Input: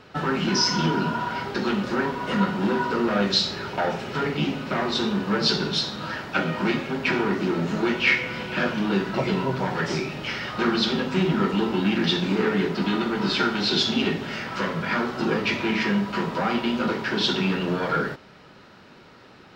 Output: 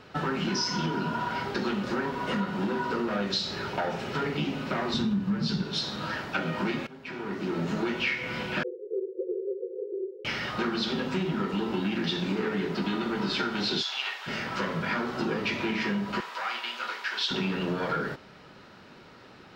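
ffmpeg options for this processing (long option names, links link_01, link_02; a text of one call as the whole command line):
ffmpeg -i in.wav -filter_complex "[0:a]asettb=1/sr,asplit=3[link_01][link_02][link_03];[link_01]atrim=end=4.944[link_04];[link_02]atrim=start=4.94:end=5.63,asetpts=PTS-STARTPTS,afade=type=in:duration=0.004:curve=qsin,afade=type=out:start_time=0.686:duration=0.004:curve=qsin,lowshelf=frequency=280:width_type=q:width=1.5:gain=10.5[link_05];[link_03]atrim=start=5.626[link_06];[link_04][link_05]acrossfade=duration=0.004:curve1=hsin:curve2=qsin[link_07];[link_07][link_06]acrossfade=duration=0.004:curve1=qsin:curve2=hsin,asettb=1/sr,asplit=3[link_08][link_09][link_10];[link_08]atrim=end=8.634[link_11];[link_09]atrim=start=8.63:end=10.25,asetpts=PTS-STARTPTS,afade=type=in:duration=0.004:curve=qsin,afade=type=out:start_time=1.616:duration=0.004:curve=qsin,asuperpass=centerf=430:order=20:qfactor=2.4[link_12];[link_10]atrim=start=10.246[link_13];[link_11][link_12]acrossfade=duration=0.004:curve1=hsin:curve2=qsin[link_14];[link_14][link_13]acrossfade=duration=0.004:curve1=qsin:curve2=hsin,asplit=3[link_15][link_16][link_17];[link_15]afade=type=out:start_time=13.81:duration=0.02[link_18];[link_16]highpass=frequency=840:width=0.5412,highpass=frequency=840:width=1.3066,afade=type=in:start_time=13.81:duration=0.02,afade=type=out:start_time=14.26:duration=0.02[link_19];[link_17]afade=type=in:start_time=14.26:duration=0.02[link_20];[link_18][link_19][link_20]amix=inputs=3:normalize=0,asettb=1/sr,asplit=3[link_21][link_22][link_23];[link_21]atrim=end=16.204[link_24];[link_22]atrim=start=16.2:end=17.31,asetpts=PTS-STARTPTS,afade=type=in:duration=0.004:curve=qsin,afade=type=out:start_time=1.106:duration=0.004:curve=qsin,highpass=1200[link_25];[link_23]atrim=start=17.306[link_26];[link_24][link_25]acrossfade=duration=0.004:curve1=hsin:curve2=qsin[link_27];[link_27][link_26]acrossfade=duration=0.004:curve1=qsin:curve2=hsin,asplit=2[link_28][link_29];[link_28]atrim=end=6.87,asetpts=PTS-STARTPTS,afade=type=out:start_time=6.866:duration=0.004:curve=hsin:silence=0.125893[link_30];[link_29]atrim=start=6.87,asetpts=PTS-STARTPTS,afade=type=in:duration=0.82:curve=qua:silence=0.125893[link_31];[link_30][link_31]concat=n=2:v=0:a=1,acompressor=threshold=-24dB:ratio=6,volume=-1.5dB" out.wav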